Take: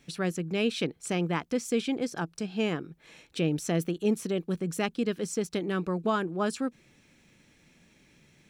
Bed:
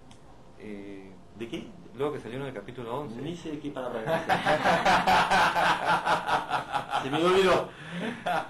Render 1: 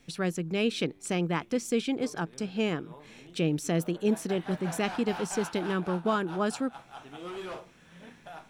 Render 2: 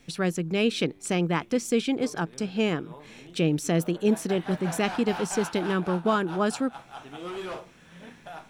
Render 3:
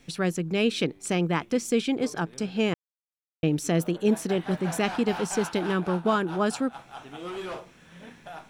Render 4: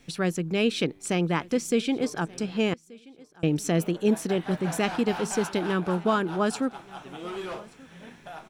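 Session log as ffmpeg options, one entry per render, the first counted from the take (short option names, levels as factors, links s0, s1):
-filter_complex "[1:a]volume=0.141[s0];[0:a][s0]amix=inputs=2:normalize=0"
-af "volume=1.5"
-filter_complex "[0:a]asplit=3[s0][s1][s2];[s0]atrim=end=2.74,asetpts=PTS-STARTPTS,afade=t=out:st=2.736:d=0.004:c=hsin[s3];[s1]atrim=start=2.74:end=3.43,asetpts=PTS-STARTPTS,volume=0[s4];[s2]atrim=start=3.43,asetpts=PTS-STARTPTS,afade=t=in:d=0.004:c=hsin[s5];[s3][s4][s5]concat=n=3:v=0:a=1"
-af "aecho=1:1:1180|2360:0.0668|0.014"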